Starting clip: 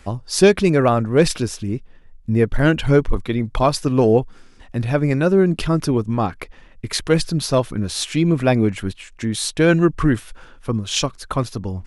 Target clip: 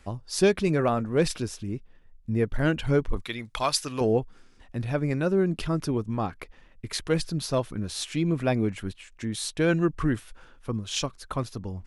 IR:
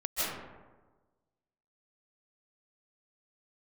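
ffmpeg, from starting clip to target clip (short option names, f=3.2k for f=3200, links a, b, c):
-filter_complex "[0:a]asettb=1/sr,asplit=3[a][b][c];[a]atrim=end=0.664[d];[b]atrim=start=0.66:end=1.17,asetpts=PTS-STARTPTS,afade=t=in:d=0.004:c=qsin,afade=t=out:st=0.506:d=0.004:c=qsin,asplit=2[e][f];[f]adelay=13,volume=-12dB[g];[e][g]amix=inputs=2:normalize=0,atrim=end_sample=22491[h];[c]atrim=start=1.166[i];[d][h]acrossfade=d=0.004:c1=hsin:c2=qsin[j];[j][i]acrossfade=d=0.004:c1=qsin:c2=hsin,asettb=1/sr,asplit=3[k][l][m];[k]atrim=end=3.224[n];[l]atrim=start=3.22:end=4.01,asetpts=PTS-STARTPTS,afade=t=in:d=0.004:c=qsin,afade=t=out:st=0.786:d=0.004:c=qsin,tiltshelf=f=900:g=-9.5[o];[m]atrim=start=4.006[p];[n][o]acrossfade=d=0.004:c1=hsin:c2=qsin[q];[q][p]acrossfade=d=0.004:c1=qsin:c2=hsin,volume=-8.5dB"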